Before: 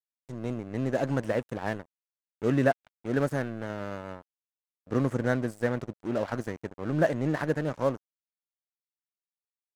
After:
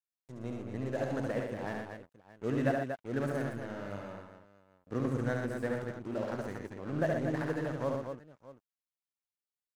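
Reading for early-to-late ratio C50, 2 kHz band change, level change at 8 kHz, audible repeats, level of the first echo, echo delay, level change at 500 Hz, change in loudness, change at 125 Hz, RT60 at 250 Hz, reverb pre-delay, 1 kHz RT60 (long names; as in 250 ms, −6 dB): no reverb audible, −5.5 dB, −5.5 dB, 4, −4.0 dB, 70 ms, −5.5 dB, −5.5 dB, −5.5 dB, no reverb audible, no reverb audible, no reverb audible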